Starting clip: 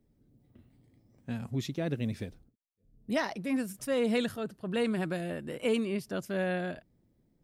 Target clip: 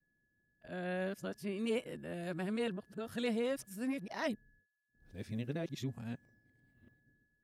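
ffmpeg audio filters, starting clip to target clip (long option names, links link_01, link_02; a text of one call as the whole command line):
ffmpeg -i in.wav -af "areverse,aeval=exprs='val(0)+0.000631*sin(2*PI*1700*n/s)':channel_layout=same,agate=range=-33dB:threshold=-58dB:ratio=3:detection=peak,volume=-6.5dB" out.wav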